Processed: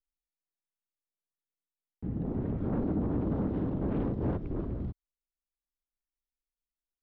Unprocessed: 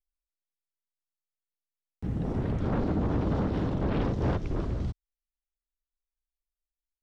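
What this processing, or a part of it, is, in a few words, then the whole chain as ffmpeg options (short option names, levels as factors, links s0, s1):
phone in a pocket: -af "lowpass=3700,equalizer=f=270:t=o:w=1.6:g=6,highshelf=f=2100:g=-12,volume=0.501"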